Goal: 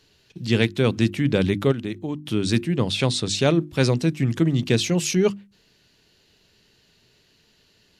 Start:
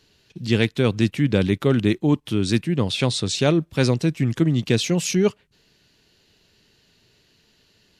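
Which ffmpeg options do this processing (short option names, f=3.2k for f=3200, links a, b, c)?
-filter_complex "[0:a]bandreject=f=50:t=h:w=6,bandreject=f=100:t=h:w=6,bandreject=f=150:t=h:w=6,bandreject=f=200:t=h:w=6,bandreject=f=250:t=h:w=6,bandreject=f=300:t=h:w=6,bandreject=f=350:t=h:w=6,asplit=3[a][b][c];[a]afade=t=out:st=1.71:d=0.02[d];[b]acompressor=threshold=-28dB:ratio=3,afade=t=in:st=1.71:d=0.02,afade=t=out:st=2.25:d=0.02[e];[c]afade=t=in:st=2.25:d=0.02[f];[d][e][f]amix=inputs=3:normalize=0"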